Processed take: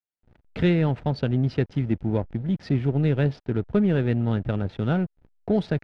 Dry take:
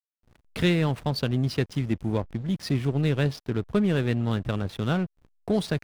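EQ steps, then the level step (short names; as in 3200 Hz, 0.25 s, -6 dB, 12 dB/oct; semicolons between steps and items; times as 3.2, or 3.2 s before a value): LPF 1800 Hz 6 dB/oct; air absorption 90 m; notch 1100 Hz, Q 5.4; +2.5 dB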